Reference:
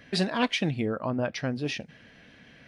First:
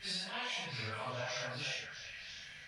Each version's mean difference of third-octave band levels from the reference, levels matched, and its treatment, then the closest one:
11.5 dB: random phases in long frames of 200 ms
guitar amp tone stack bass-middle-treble 10-0-10
downward compressor 6 to 1, threshold −45 dBFS, peak gain reduction 14 dB
on a send: echo through a band-pass that steps 217 ms, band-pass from 650 Hz, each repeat 1.4 octaves, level −1.5 dB
on the sum: level +7 dB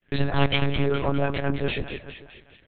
8.5 dB: noise gate −50 dBFS, range −39 dB
comb filter 4.4 ms, depth 39%
echo with a time of its own for lows and highs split 710 Hz, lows 145 ms, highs 206 ms, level −7 dB
one-pitch LPC vocoder at 8 kHz 140 Hz
level +4 dB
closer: second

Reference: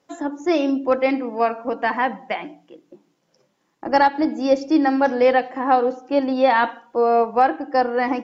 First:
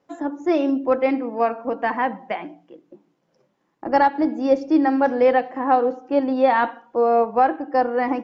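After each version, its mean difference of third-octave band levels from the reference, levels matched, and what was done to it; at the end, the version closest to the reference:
1.5 dB: high-shelf EQ 3,100 Hz −12 dB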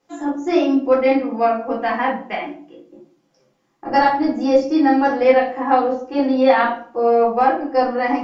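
3.5 dB: rectangular room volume 330 cubic metres, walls furnished, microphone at 3.8 metres
level −5.5 dB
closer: first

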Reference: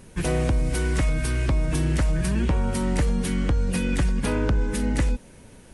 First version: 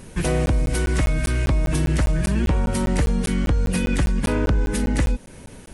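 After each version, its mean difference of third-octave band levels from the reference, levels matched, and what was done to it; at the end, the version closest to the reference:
1.5 dB: in parallel at +1 dB: downward compressor, threshold −31 dBFS, peak gain reduction 12.5 dB
on the sum: regular buffer underruns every 0.20 s, samples 512, zero, from 0:00.46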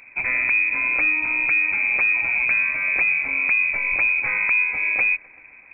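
19.0 dB: on a send: feedback echo with a high-pass in the loop 129 ms, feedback 69%, level −20.5 dB
on the sum: voice inversion scrambler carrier 2,500 Hz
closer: first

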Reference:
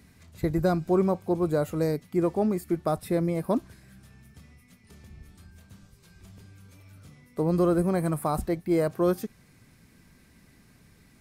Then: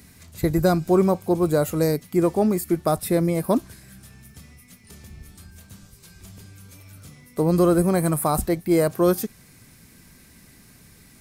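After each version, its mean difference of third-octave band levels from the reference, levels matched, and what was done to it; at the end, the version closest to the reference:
2.5 dB: high-shelf EQ 5,200 Hz +10.5 dB
level +5 dB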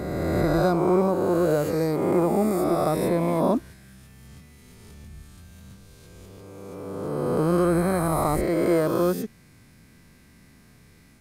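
6.0 dB: peak hold with a rise ahead of every peak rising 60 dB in 2.41 s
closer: first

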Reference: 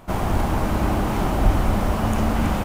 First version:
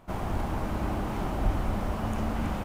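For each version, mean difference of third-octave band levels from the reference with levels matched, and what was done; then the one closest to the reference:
1.0 dB: high-shelf EQ 5,200 Hz −4.5 dB
level −9 dB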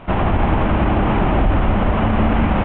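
8.5 dB: variable-slope delta modulation 16 kbit/s
brickwall limiter −15.5 dBFS, peak gain reduction 9 dB
level +8 dB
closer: first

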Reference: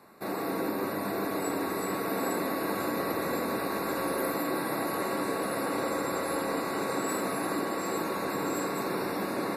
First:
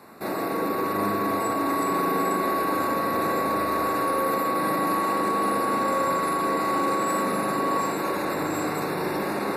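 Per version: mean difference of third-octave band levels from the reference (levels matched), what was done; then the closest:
3.0 dB: brickwall limiter −28 dBFS, peak gain reduction 10 dB
spring reverb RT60 3.5 s, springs 39 ms, chirp 55 ms, DRR 0.5 dB
level +7 dB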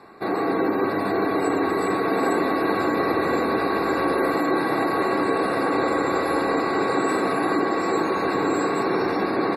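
5.0 dB: comb filter 2.6 ms, depth 35%
gate on every frequency bin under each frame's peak −30 dB strong
high-frequency loss of the air 79 metres
level +8.5 dB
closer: first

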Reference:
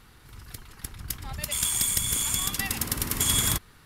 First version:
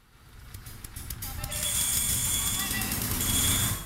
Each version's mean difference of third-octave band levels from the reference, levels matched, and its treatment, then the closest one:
4.5 dB: dense smooth reverb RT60 0.77 s, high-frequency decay 0.8×, pre-delay 110 ms, DRR −4 dB
level −6 dB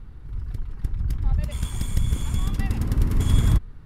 9.0 dB: spectral tilt −4.5 dB per octave
level −3 dB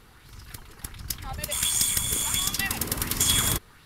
1.0 dB: auto-filter bell 1.4 Hz 400–6,000 Hz +7 dB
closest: third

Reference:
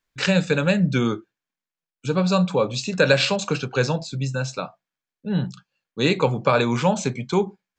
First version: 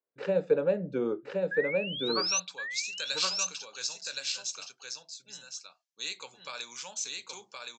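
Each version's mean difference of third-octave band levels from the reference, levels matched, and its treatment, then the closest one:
11.0 dB: low-shelf EQ 110 Hz −10.5 dB
sound drawn into the spectrogram rise, 0:01.51–0:02.40, 1,600–6,300 Hz −15 dBFS
band-pass filter sweep 470 Hz → 6,000 Hz, 0:01.91–0:02.57
on a send: single-tap delay 1,069 ms −3 dB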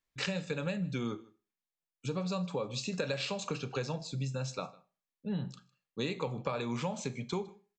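3.0 dB: notch filter 1,500 Hz, Q 8.9
downward compressor, threshold −24 dBFS, peak gain reduction 11.5 dB
single-tap delay 155 ms −23 dB
four-comb reverb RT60 0.35 s, combs from 30 ms, DRR 16.5 dB
level −7.5 dB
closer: second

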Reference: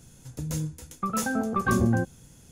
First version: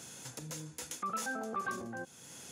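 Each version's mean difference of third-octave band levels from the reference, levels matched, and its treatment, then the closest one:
10.0 dB: downward compressor 2 to 1, threshold −41 dBFS, peak gain reduction 12.5 dB
brickwall limiter −35 dBFS, peak gain reduction 11 dB
meter weighting curve A
level +8.5 dB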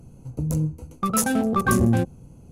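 5.0 dB: adaptive Wiener filter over 25 samples
in parallel at +2.5 dB: brickwall limiter −22.5 dBFS, peak gain reduction 10 dB
on the sum: parametric band 11,000 Hz +11 dB 1 octave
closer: second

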